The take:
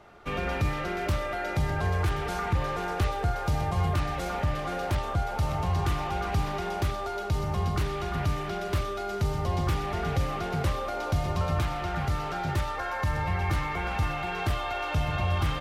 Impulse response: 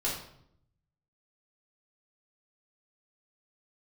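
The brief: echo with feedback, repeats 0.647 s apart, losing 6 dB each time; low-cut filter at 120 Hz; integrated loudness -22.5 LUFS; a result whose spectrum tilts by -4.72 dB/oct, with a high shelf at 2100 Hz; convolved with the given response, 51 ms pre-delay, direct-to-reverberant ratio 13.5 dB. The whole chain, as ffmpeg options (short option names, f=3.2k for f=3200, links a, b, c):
-filter_complex "[0:a]highpass=120,highshelf=f=2.1k:g=5,aecho=1:1:647|1294|1941|2588|3235|3882:0.501|0.251|0.125|0.0626|0.0313|0.0157,asplit=2[a][b];[1:a]atrim=start_sample=2205,adelay=51[c];[b][c]afir=irnorm=-1:irlink=0,volume=-19.5dB[d];[a][d]amix=inputs=2:normalize=0,volume=6.5dB"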